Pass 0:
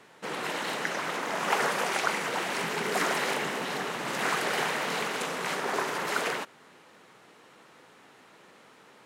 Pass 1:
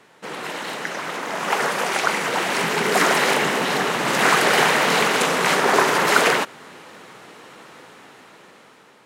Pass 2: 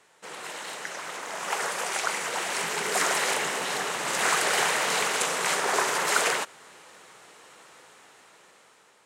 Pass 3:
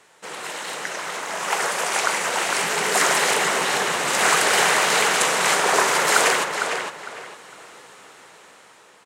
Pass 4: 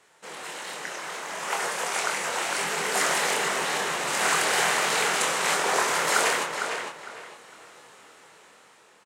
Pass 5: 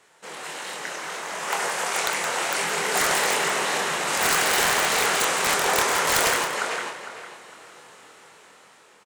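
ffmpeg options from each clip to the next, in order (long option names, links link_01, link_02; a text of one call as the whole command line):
ffmpeg -i in.wav -af "dynaudnorm=framelen=860:gausssize=5:maxgain=11.5dB,volume=2.5dB" out.wav
ffmpeg -i in.wav -af "equalizer=frequency=125:width_type=o:width=1:gain=-5,equalizer=frequency=250:width_type=o:width=1:gain=-8,equalizer=frequency=8000:width_type=o:width=1:gain=9,volume=-8dB" out.wav
ffmpeg -i in.wav -filter_complex "[0:a]asplit=2[link_01][link_02];[link_02]adelay=455,lowpass=frequency=4100:poles=1,volume=-5.5dB,asplit=2[link_03][link_04];[link_04]adelay=455,lowpass=frequency=4100:poles=1,volume=0.28,asplit=2[link_05][link_06];[link_06]adelay=455,lowpass=frequency=4100:poles=1,volume=0.28,asplit=2[link_07][link_08];[link_08]adelay=455,lowpass=frequency=4100:poles=1,volume=0.28[link_09];[link_01][link_03][link_05][link_07][link_09]amix=inputs=5:normalize=0,volume=6dB" out.wav
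ffmpeg -i in.wav -filter_complex "[0:a]asplit=2[link_01][link_02];[link_02]adelay=25,volume=-5dB[link_03];[link_01][link_03]amix=inputs=2:normalize=0,volume=-6.5dB" out.wav
ffmpeg -i in.wav -af "aeval=exprs='(mod(5.31*val(0)+1,2)-1)/5.31':channel_layout=same,aecho=1:1:169:0.335,volume=2dB" out.wav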